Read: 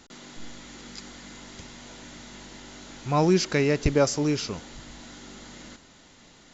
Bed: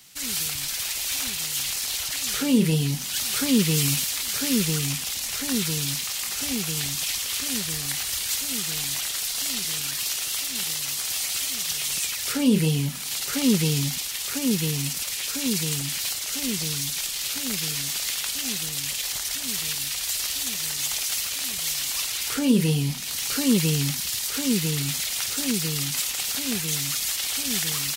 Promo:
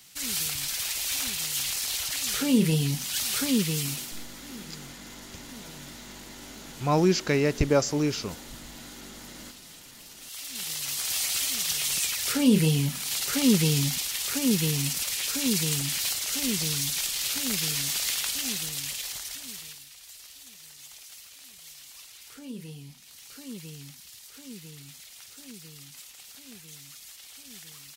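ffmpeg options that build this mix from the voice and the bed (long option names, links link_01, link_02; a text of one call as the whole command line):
ffmpeg -i stem1.wav -i stem2.wav -filter_complex "[0:a]adelay=3750,volume=-1dB[link_01];[1:a]volume=18.5dB,afade=type=out:start_time=3.3:duration=0.98:silence=0.112202,afade=type=in:start_time=10.16:duration=1.03:silence=0.0944061,afade=type=out:start_time=18.13:duration=1.73:silence=0.105925[link_02];[link_01][link_02]amix=inputs=2:normalize=0" out.wav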